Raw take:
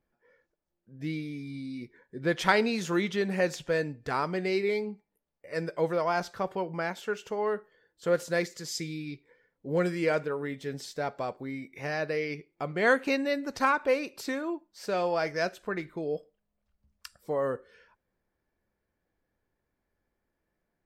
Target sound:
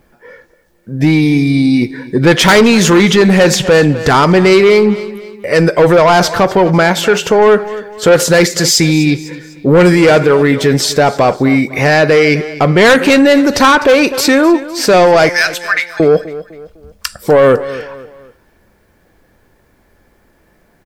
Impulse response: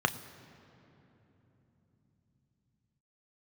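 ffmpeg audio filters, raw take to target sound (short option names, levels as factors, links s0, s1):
-filter_complex "[0:a]asettb=1/sr,asplit=3[s0][s1][s2];[s0]atrim=end=15.294[s3];[s1]atrim=start=15.29:end=16,asetpts=PTS-STARTPTS,afade=t=in:d=0.004:c=qsin,afade=t=out:st=0.706:d=0.004:c=qsin,highpass=f=1400:w=0.5412,highpass=f=1400:w=1.3066[s4];[s2]atrim=start=15.996[s5];[s3][s4]acrossfade=d=0.004:c1=hsin:c2=qsin[s6];[s6][s5]acrossfade=d=0.004:c1=qsin:c2=hsin,asoftclip=type=tanh:threshold=0.0447,asplit=2[s7][s8];[s8]aecho=0:1:252|504|756:0.119|0.0464|0.0181[s9];[s7][s9]amix=inputs=2:normalize=0,alimiter=level_in=31.6:limit=0.891:release=50:level=0:latency=1,volume=0.841"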